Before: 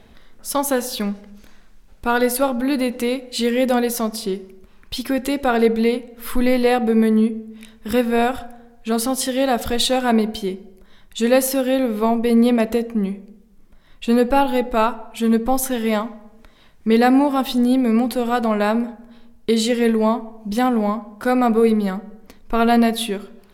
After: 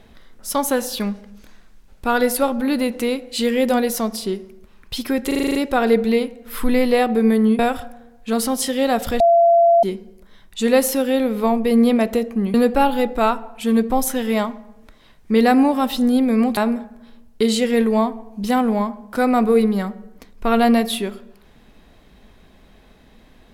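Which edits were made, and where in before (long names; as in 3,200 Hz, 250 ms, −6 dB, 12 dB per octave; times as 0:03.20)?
0:05.27: stutter 0.04 s, 8 plays
0:07.31–0:08.18: remove
0:09.79–0:10.42: beep over 681 Hz −9.5 dBFS
0:13.13–0:14.10: remove
0:18.13–0:18.65: remove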